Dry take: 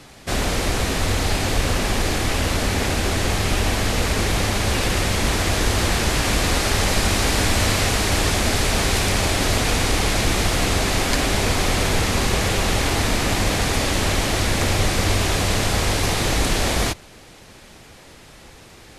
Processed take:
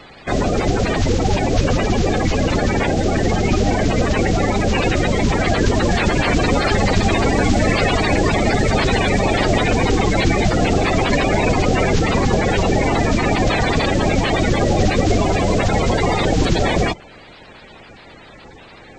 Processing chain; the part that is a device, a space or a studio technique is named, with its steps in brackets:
clip after many re-uploads (low-pass filter 5,400 Hz 24 dB per octave; spectral magnitudes quantised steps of 30 dB)
level +4.5 dB

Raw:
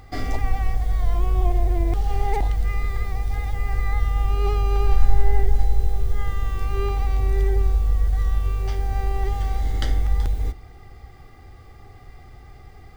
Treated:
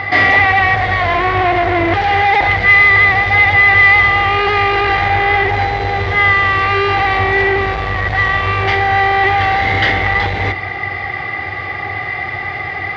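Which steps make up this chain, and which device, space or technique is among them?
overdrive pedal into a guitar cabinet (mid-hump overdrive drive 39 dB, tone 2,900 Hz, clips at −2.5 dBFS; loudspeaker in its box 96–4,200 Hz, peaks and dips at 97 Hz +9 dB, 250 Hz −7 dB, 440 Hz −5 dB, 1,300 Hz −3 dB, 2,000 Hz +10 dB)
level −2 dB

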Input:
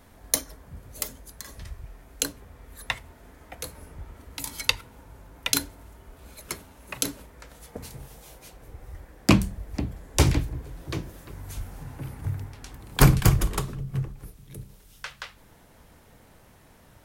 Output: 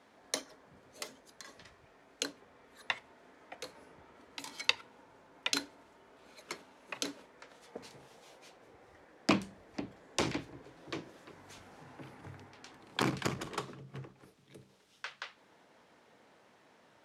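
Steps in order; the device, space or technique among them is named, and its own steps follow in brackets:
public-address speaker with an overloaded transformer (saturating transformer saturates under 270 Hz; band-pass filter 280–5,300 Hz)
level −5 dB

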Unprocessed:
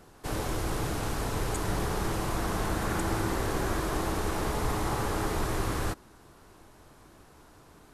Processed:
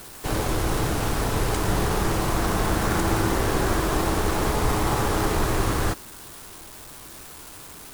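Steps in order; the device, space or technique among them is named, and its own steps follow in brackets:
budget class-D amplifier (gap after every zero crossing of 0.12 ms; spike at every zero crossing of −33 dBFS)
level +7 dB

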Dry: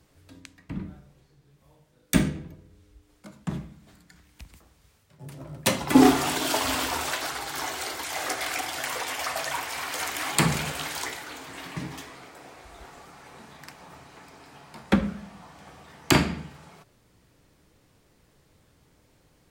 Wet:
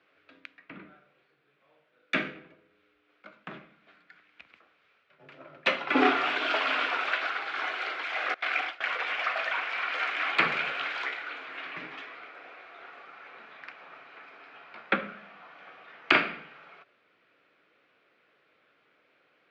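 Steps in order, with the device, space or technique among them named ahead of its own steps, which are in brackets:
phone earpiece (loudspeaker in its box 500–3,300 Hz, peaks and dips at 900 Hz −8 dB, 1,400 Hz +7 dB, 2,400 Hz +6 dB)
0:08.34–0:08.99: noise gate with hold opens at −20 dBFS

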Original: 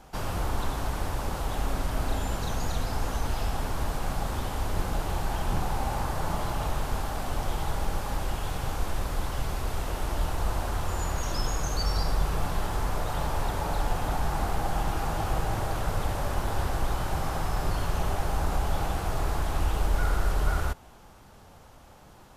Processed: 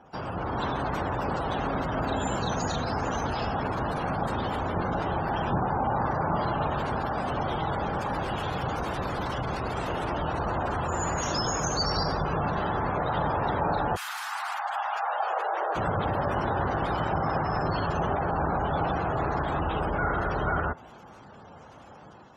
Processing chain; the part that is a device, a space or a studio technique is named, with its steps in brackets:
0:13.95–0:15.75: high-pass filter 1,400 Hz → 400 Hz 24 dB per octave
noise-suppressed video call (high-pass filter 120 Hz 12 dB per octave; gate on every frequency bin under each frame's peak −20 dB strong; automatic gain control gain up to 5 dB; level +1 dB; Opus 32 kbit/s 48,000 Hz)

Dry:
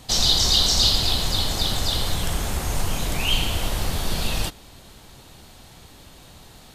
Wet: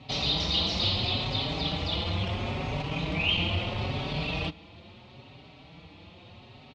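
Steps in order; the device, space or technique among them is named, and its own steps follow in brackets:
barber-pole flanger into a guitar amplifier (barber-pole flanger 4.9 ms +0.75 Hz; soft clipping −16.5 dBFS, distortion −18 dB; loudspeaker in its box 82–3,800 Hz, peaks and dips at 96 Hz +6 dB, 160 Hz +5 dB, 290 Hz +4 dB, 580 Hz +3 dB, 1,600 Hz −9 dB, 2,500 Hz +7 dB)

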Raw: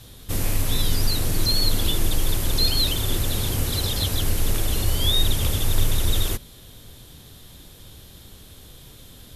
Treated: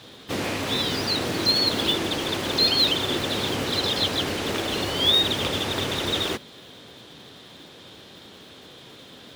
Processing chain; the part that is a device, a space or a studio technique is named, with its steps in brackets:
early digital voice recorder (band-pass filter 250–3,900 Hz; one scale factor per block 5 bits)
level +6.5 dB

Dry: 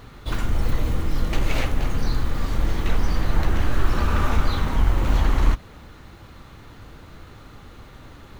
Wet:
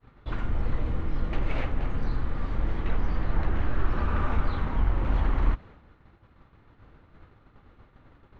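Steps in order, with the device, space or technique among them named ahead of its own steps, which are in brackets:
hearing-loss simulation (low-pass filter 2,300 Hz 12 dB per octave; downward expander −36 dBFS)
level −5.5 dB

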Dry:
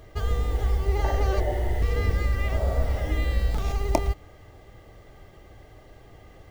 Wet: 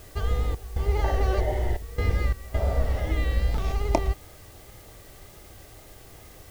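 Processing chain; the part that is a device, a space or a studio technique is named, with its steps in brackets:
worn cassette (low-pass filter 6,400 Hz; tape wow and flutter; tape dropouts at 0:00.55/0:01.77/0:02.33, 210 ms −15 dB; white noise bed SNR 27 dB)

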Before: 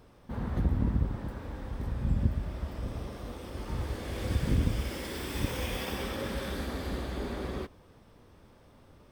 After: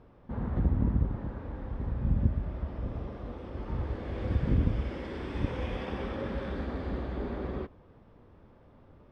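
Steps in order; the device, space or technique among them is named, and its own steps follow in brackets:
phone in a pocket (low-pass filter 3,800 Hz 12 dB per octave; high-shelf EQ 2,300 Hz −12 dB)
level +1 dB

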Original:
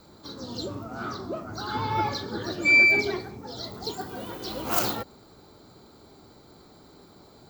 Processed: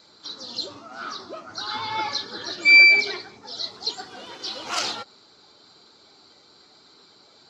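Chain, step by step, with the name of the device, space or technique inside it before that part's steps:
clip after many re-uploads (low-pass filter 5,400 Hz 24 dB per octave; spectral magnitudes quantised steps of 15 dB)
spectral tilt +4.5 dB per octave
0:00.78–0:01.19: high-pass filter 150 Hz

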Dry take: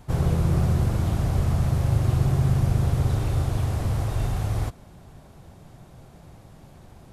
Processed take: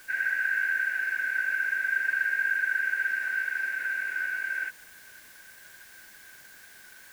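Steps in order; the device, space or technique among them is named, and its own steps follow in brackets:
split-band scrambled radio (band-splitting scrambler in four parts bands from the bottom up 2143; band-pass filter 350–3,100 Hz; white noise bed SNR 23 dB)
level −6.5 dB

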